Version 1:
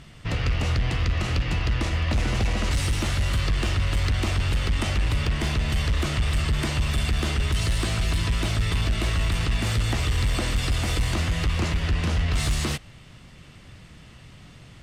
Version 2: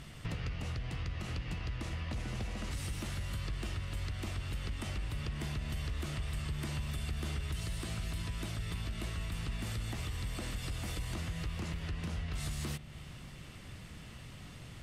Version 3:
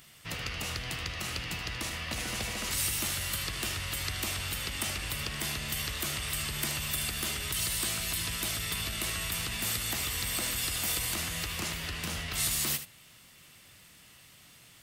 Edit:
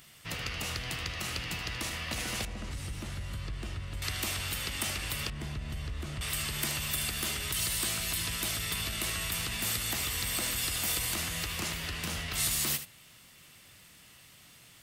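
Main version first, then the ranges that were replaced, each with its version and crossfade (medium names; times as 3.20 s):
3
2.45–4.02 s: from 2
5.30–6.21 s: from 2
not used: 1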